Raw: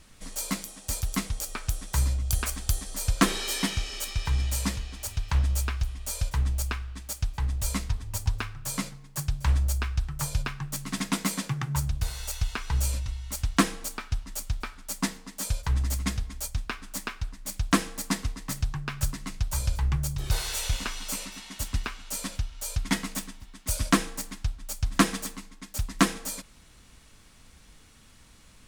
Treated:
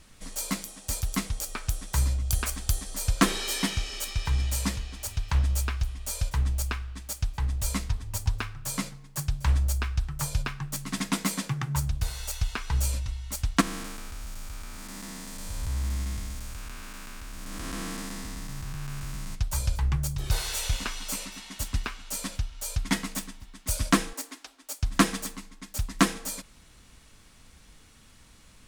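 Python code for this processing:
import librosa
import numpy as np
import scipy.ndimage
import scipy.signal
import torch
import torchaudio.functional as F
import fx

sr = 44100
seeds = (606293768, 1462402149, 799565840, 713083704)

y = fx.spec_blur(x, sr, span_ms=426.0, at=(13.6, 19.34), fade=0.02)
y = fx.ellip_highpass(y, sr, hz=260.0, order=4, stop_db=40, at=(24.13, 24.83))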